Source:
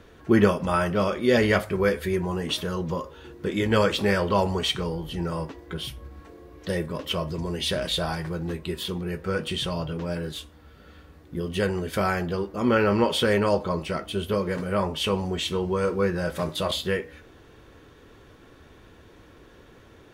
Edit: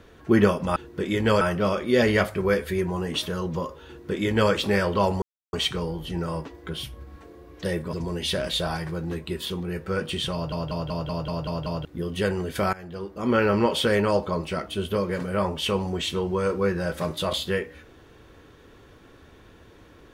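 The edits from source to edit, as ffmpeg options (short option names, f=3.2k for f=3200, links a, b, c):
-filter_complex "[0:a]asplit=14[a][b][c][d][e][f][g][h][i][j][k][l][m][n];[a]atrim=end=0.762[o];[b]atrim=start=3.218:end=3.872[p];[c]atrim=start=0.758:end=4.57,asetpts=PTS-STARTPTS,afade=t=out:st=3.808:d=0.004:c=hsin,apad=pad_dur=0.31[q];[d]atrim=start=4.57:end=6.972,asetpts=PTS-STARTPTS,afade=t=in:d=0.004:c=hsin[r];[e]atrim=start=7.308:end=9.902[s];[f]atrim=start=9.708:end=9.902[t];[g]atrim=start=9.708:end=9.902[u];[h]atrim=start=9.708:end=9.902[v];[i]atrim=start=9.708:end=9.902[w];[j]atrim=start=9.708:end=9.902[x];[k]atrim=start=9.708:end=9.902[y];[l]atrim=start=9.708:end=9.902[z];[m]atrim=start=11.228:end=12.11,asetpts=PTS-STARTPTS,afade=t=out:st=0.878:d=0.004:c=hsin:silence=0.1[aa];[n]atrim=start=12.11,asetpts=PTS-STARTPTS,afade=t=in:d=0.65:silence=0.1[ab];[o][p]acrossfade=d=0.004:c1=hsin:c2=hsin[ac];[q][r]concat=n=2:v=0:a=1[ad];[ac][ad]acrossfade=d=0.004:c1=hsin:c2=hsin[ae];[ae][s]acrossfade=d=0.004:c1=hsin:c2=hsin[af];[af][t]acrossfade=d=0.004:c1=hsin:c2=hsin[ag];[ag][u]acrossfade=d=0.004:c1=hsin:c2=hsin[ah];[ah][v]acrossfade=d=0.004:c1=hsin:c2=hsin[ai];[ai][w]acrossfade=d=0.004:c1=hsin:c2=hsin[aj];[aj][x]acrossfade=d=0.004:c1=hsin:c2=hsin[ak];[ak][y]acrossfade=d=0.004:c1=hsin:c2=hsin[al];[al][z]acrossfade=d=0.004:c1=hsin:c2=hsin[am];[aa][ab]concat=n=2:v=0:a=1[an];[am][an]acrossfade=d=0.004:c1=hsin:c2=hsin"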